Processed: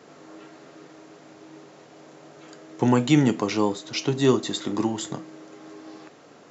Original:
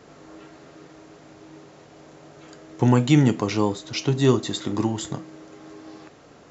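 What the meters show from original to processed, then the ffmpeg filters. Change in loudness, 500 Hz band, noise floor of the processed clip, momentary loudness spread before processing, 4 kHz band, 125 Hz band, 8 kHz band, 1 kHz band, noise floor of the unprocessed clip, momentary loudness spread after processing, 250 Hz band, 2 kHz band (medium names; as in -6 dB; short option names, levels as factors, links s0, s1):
-1.5 dB, 0.0 dB, -51 dBFS, 11 LU, 0.0 dB, -5.5 dB, no reading, 0.0 dB, -50 dBFS, 16 LU, -1.0 dB, 0.0 dB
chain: -af "highpass=170"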